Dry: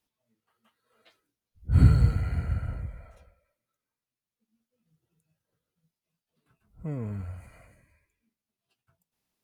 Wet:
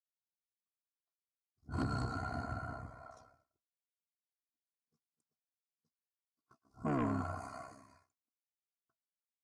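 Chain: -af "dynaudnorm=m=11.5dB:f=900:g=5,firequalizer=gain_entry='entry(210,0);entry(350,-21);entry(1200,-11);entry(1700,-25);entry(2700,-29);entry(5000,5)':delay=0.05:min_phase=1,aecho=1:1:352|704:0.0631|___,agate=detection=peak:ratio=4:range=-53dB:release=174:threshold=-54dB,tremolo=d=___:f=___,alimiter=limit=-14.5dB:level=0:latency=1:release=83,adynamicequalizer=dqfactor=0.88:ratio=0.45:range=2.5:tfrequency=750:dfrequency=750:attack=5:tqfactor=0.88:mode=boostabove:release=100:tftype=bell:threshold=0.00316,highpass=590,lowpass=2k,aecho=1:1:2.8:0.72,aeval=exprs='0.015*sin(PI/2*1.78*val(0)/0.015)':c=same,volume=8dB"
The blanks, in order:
0.0246, 0.75, 65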